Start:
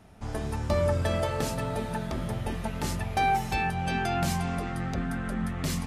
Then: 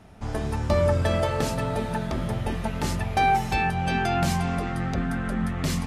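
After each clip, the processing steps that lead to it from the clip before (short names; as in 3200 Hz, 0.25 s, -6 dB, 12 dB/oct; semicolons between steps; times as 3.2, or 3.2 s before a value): high shelf 8700 Hz -6 dB; gain +4 dB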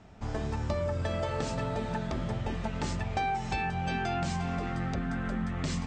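steep low-pass 8400 Hz 96 dB/oct; compressor, threshold -24 dBFS, peak gain reduction 7 dB; gain -3.5 dB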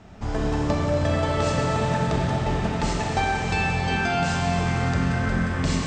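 Schroeder reverb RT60 3.8 s, combs from 30 ms, DRR -2 dB; gain +6 dB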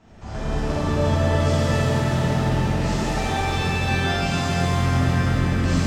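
shimmer reverb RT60 2.3 s, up +7 st, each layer -8 dB, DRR -8 dB; gain -8 dB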